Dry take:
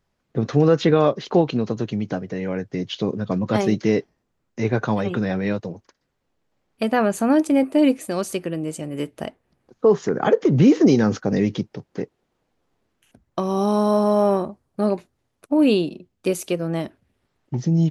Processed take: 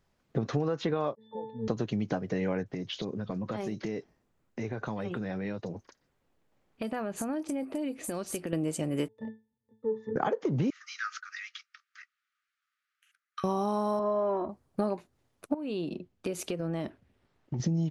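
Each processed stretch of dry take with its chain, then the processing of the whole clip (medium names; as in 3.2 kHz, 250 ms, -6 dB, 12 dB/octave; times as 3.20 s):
1.15–1.68 s: peaking EQ 630 Hz +9 dB 0.97 oct + short-mantissa float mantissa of 4-bit + pitch-class resonator A, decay 0.73 s
2.63–8.53 s: compression 5:1, threshold -32 dBFS + bands offset in time lows, highs 30 ms, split 5 kHz
9.08–10.16 s: compression 4:1, threshold -21 dBFS + waveshaping leveller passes 1 + pitch-class resonator A, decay 0.27 s
10.70–13.44 s: Chebyshev high-pass 1.2 kHz, order 8 + treble shelf 3.3 kHz -11 dB
13.99–14.49 s: distance through air 280 m + comb 3 ms, depth 62%
15.54–17.60 s: treble shelf 7.8 kHz -11.5 dB + compression, threshold -29 dBFS
whole clip: dynamic bell 930 Hz, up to +6 dB, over -34 dBFS, Q 1.4; compression 10:1, threshold -26 dBFS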